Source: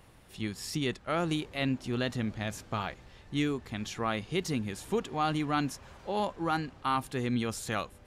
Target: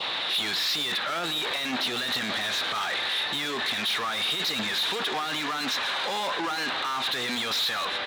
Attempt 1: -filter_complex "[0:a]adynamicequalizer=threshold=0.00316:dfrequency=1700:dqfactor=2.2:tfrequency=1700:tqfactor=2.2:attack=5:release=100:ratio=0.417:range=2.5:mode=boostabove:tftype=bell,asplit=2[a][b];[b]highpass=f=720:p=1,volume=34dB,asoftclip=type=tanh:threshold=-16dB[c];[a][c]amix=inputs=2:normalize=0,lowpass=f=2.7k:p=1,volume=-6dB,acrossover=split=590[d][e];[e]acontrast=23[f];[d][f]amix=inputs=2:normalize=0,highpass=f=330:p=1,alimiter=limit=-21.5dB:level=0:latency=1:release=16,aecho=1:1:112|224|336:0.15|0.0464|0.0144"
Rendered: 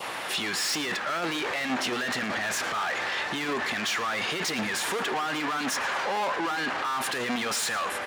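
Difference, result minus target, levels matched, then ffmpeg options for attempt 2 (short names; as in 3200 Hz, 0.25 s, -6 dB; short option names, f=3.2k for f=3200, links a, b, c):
4000 Hz band -5.0 dB
-filter_complex "[0:a]adynamicequalizer=threshold=0.00316:dfrequency=1700:dqfactor=2.2:tfrequency=1700:tqfactor=2.2:attack=5:release=100:ratio=0.417:range=2.5:mode=boostabove:tftype=bell,lowpass=f=3.8k:t=q:w=9,asplit=2[a][b];[b]highpass=f=720:p=1,volume=34dB,asoftclip=type=tanh:threshold=-16dB[c];[a][c]amix=inputs=2:normalize=0,lowpass=f=2.7k:p=1,volume=-6dB,acrossover=split=590[d][e];[e]acontrast=23[f];[d][f]amix=inputs=2:normalize=0,highpass=f=330:p=1,alimiter=limit=-21.5dB:level=0:latency=1:release=16,aecho=1:1:112|224|336:0.15|0.0464|0.0144"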